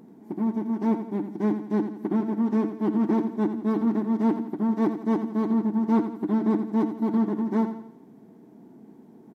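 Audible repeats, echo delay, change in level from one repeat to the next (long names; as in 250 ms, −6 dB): 4, 85 ms, −7.0 dB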